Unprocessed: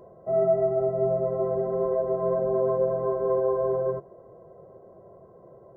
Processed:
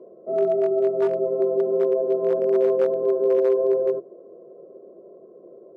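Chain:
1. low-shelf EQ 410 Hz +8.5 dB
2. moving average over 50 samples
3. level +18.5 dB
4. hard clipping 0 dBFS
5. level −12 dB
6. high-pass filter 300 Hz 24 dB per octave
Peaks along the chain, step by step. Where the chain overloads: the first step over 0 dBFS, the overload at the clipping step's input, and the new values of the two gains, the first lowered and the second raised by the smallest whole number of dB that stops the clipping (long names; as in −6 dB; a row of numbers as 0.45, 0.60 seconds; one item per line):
−10.0, −14.0, +4.5, 0.0, −12.0, −11.0 dBFS
step 3, 4.5 dB
step 3 +13.5 dB, step 5 −7 dB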